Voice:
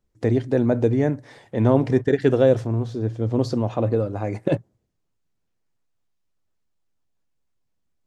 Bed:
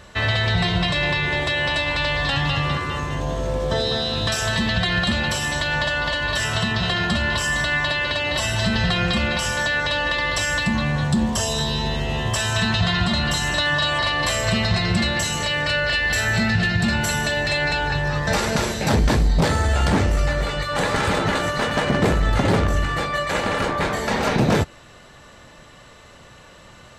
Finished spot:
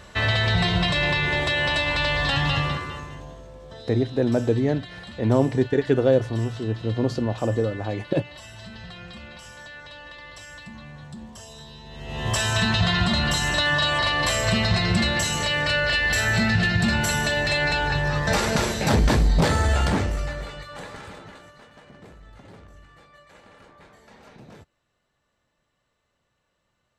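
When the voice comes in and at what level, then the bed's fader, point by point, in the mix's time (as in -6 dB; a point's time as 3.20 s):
3.65 s, -2.0 dB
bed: 2.59 s -1 dB
3.50 s -20 dB
11.86 s -20 dB
12.31 s -1 dB
19.73 s -1 dB
21.71 s -28.5 dB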